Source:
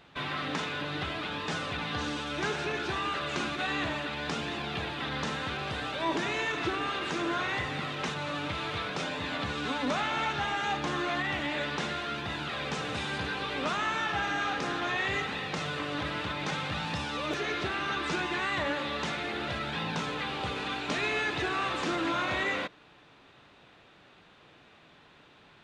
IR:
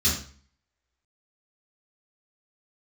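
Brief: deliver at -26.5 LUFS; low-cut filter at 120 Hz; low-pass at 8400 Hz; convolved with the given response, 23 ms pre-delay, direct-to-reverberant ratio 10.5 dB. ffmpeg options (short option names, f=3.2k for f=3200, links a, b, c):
-filter_complex "[0:a]highpass=120,lowpass=8.4k,asplit=2[a][b];[1:a]atrim=start_sample=2205,adelay=23[c];[b][c]afir=irnorm=-1:irlink=0,volume=-22dB[d];[a][d]amix=inputs=2:normalize=0,volume=4.5dB"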